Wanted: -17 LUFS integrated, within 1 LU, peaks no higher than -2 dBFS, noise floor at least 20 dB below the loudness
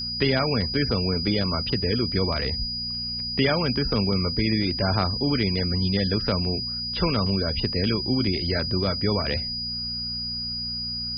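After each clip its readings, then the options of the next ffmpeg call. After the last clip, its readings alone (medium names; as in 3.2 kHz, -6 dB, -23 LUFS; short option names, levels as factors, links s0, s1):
hum 60 Hz; highest harmonic 240 Hz; hum level -38 dBFS; steady tone 4.9 kHz; tone level -28 dBFS; loudness -24.0 LUFS; peak level -8.0 dBFS; loudness target -17.0 LUFS
-> -af "bandreject=f=60:t=h:w=4,bandreject=f=120:t=h:w=4,bandreject=f=180:t=h:w=4,bandreject=f=240:t=h:w=4"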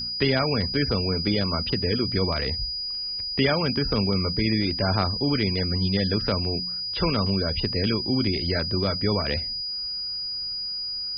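hum not found; steady tone 4.9 kHz; tone level -28 dBFS
-> -af "bandreject=f=4900:w=30"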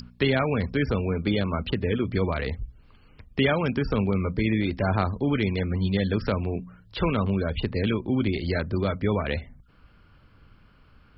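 steady tone not found; loudness -26.0 LUFS; peak level -9.0 dBFS; loudness target -17.0 LUFS
-> -af "volume=2.82,alimiter=limit=0.794:level=0:latency=1"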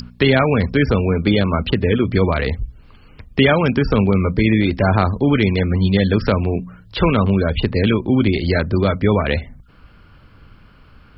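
loudness -17.5 LUFS; peak level -2.0 dBFS; noise floor -47 dBFS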